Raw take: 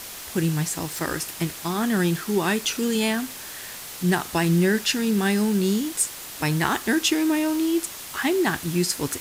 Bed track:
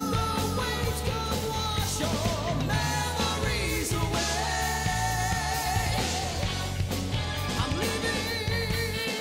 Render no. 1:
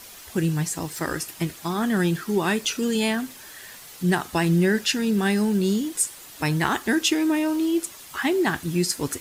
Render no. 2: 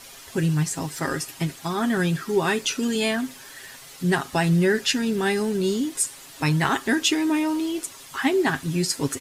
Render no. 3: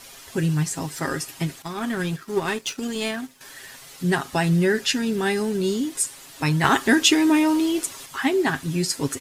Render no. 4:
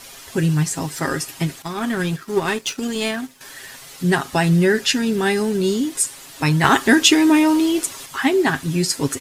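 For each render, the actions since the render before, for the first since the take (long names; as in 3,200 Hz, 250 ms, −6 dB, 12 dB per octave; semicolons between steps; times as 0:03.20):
broadband denoise 8 dB, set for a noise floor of −38 dBFS
Bessel low-pass filter 11,000 Hz, order 2; comb filter 7.4 ms, depth 55%
0:01.62–0:03.41: power curve on the samples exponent 1.4; 0:06.64–0:08.06: clip gain +4.5 dB
level +4 dB; brickwall limiter −1 dBFS, peak gain reduction 0.5 dB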